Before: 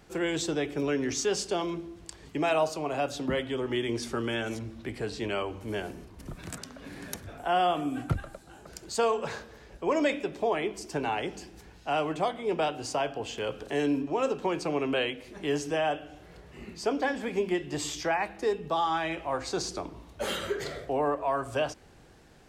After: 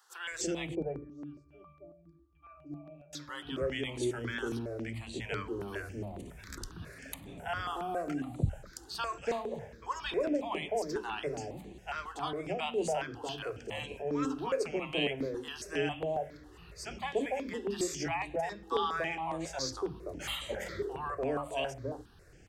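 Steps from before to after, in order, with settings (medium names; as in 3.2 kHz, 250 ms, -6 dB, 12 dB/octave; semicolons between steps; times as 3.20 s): 0.75–3.13 s: pitch-class resonator D, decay 0.44 s; three bands offset in time highs, mids, lows 290/320 ms, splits 240/800 Hz; stepped phaser 7.3 Hz 630–5200 Hz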